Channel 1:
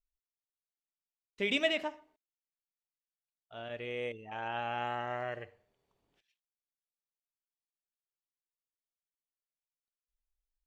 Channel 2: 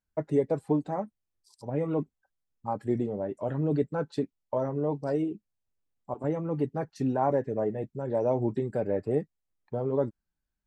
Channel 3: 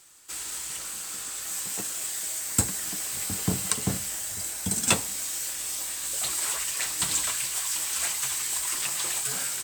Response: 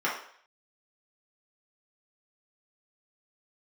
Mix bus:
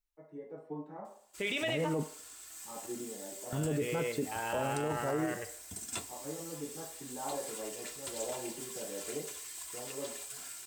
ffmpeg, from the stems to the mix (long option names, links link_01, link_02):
-filter_complex "[0:a]volume=0.5dB,asplit=3[link_01][link_02][link_03];[link_02]volume=-17dB[link_04];[1:a]dynaudnorm=framelen=160:gausssize=7:maxgain=10.5dB,volume=-12dB,asplit=2[link_05][link_06];[link_06]volume=-21dB[link_07];[2:a]aecho=1:1:2.9:0.52,adelay=1050,volume=-16.5dB[link_08];[link_03]apad=whole_len=470529[link_09];[link_05][link_09]sidechaingate=range=-33dB:threshold=-56dB:ratio=16:detection=peak[link_10];[3:a]atrim=start_sample=2205[link_11];[link_04][link_07]amix=inputs=2:normalize=0[link_12];[link_12][link_11]afir=irnorm=-1:irlink=0[link_13];[link_01][link_10][link_08][link_13]amix=inputs=4:normalize=0,alimiter=level_in=0.5dB:limit=-24dB:level=0:latency=1:release=26,volume=-0.5dB"